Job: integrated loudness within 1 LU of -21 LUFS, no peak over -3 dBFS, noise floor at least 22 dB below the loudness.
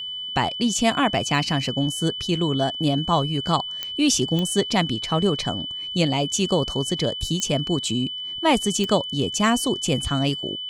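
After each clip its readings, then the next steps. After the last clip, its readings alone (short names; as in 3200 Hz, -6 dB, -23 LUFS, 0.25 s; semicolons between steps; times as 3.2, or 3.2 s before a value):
clicks 4; steady tone 3000 Hz; tone level -29 dBFS; loudness -22.5 LUFS; peak -6.0 dBFS; loudness target -21.0 LUFS
-> de-click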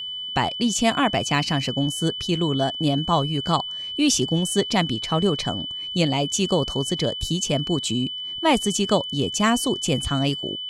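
clicks 0; steady tone 3000 Hz; tone level -29 dBFS
-> notch 3000 Hz, Q 30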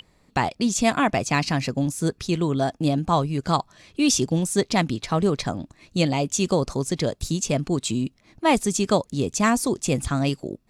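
steady tone none; loudness -23.5 LUFS; peak -6.0 dBFS; loudness target -21.0 LUFS
-> gain +2.5 dB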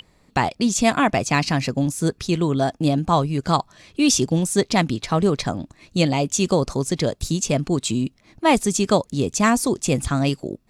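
loudness -21.0 LUFS; peak -3.5 dBFS; noise floor -59 dBFS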